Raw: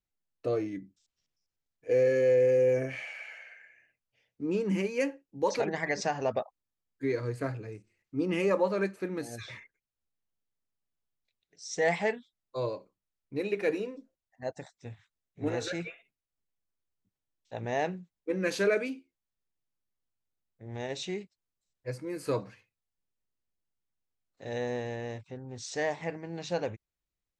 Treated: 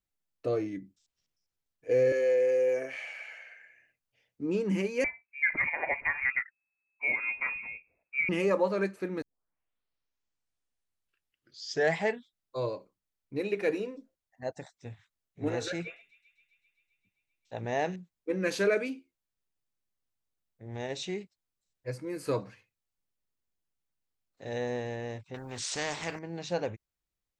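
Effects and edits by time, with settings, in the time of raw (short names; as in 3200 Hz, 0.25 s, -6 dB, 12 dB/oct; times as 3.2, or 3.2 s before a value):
2.12–3.04 HPF 440 Hz
5.04–8.29 inverted band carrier 2600 Hz
9.22 tape start 2.83 s
15.83–17.96 thin delay 0.131 s, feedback 77%, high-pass 3200 Hz, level -11 dB
25.34–26.19 spectral compressor 2:1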